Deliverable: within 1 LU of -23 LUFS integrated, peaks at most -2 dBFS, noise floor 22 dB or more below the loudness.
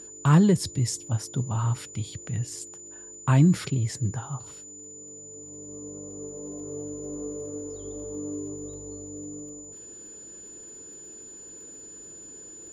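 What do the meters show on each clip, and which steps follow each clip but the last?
tick rate 44 per s; steady tone 7 kHz; tone level -42 dBFS; loudness -28.0 LUFS; peak level -8.0 dBFS; loudness target -23.0 LUFS
-> de-click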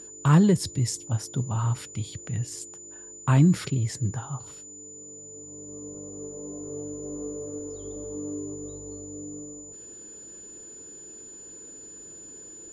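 tick rate 0.24 per s; steady tone 7 kHz; tone level -42 dBFS
-> band-stop 7 kHz, Q 30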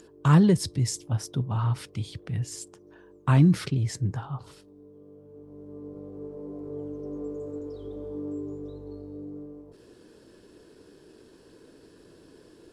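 steady tone not found; loudness -27.5 LUFS; peak level -8.0 dBFS; loudness target -23.0 LUFS
-> trim +4.5 dB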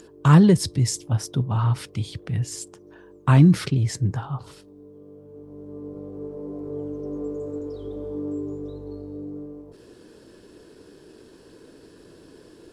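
loudness -23.0 LUFS; peak level -3.5 dBFS; noise floor -50 dBFS

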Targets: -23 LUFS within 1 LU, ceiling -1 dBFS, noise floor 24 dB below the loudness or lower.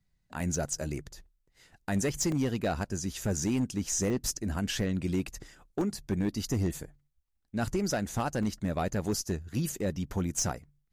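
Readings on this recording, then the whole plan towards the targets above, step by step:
clipped samples 1.2%; clipping level -22.5 dBFS; dropouts 5; longest dropout 1.8 ms; loudness -32.0 LUFS; peak level -22.5 dBFS; loudness target -23.0 LUFS
-> clip repair -22.5 dBFS; interpolate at 0.40/2.32/4.10/5.81/8.43 s, 1.8 ms; trim +9 dB

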